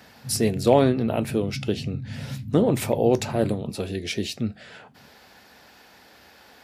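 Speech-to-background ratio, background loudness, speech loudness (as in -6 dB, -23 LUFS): 11.5 dB, -35.5 LUFS, -24.0 LUFS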